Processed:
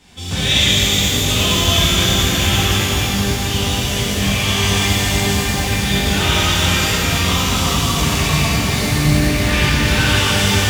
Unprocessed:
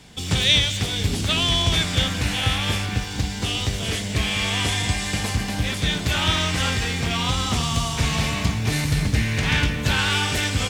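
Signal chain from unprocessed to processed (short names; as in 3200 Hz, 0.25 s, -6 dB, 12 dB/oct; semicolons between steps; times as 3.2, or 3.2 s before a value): shimmer reverb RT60 3.5 s, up +12 st, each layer -8 dB, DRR -10.5 dB; gain -5 dB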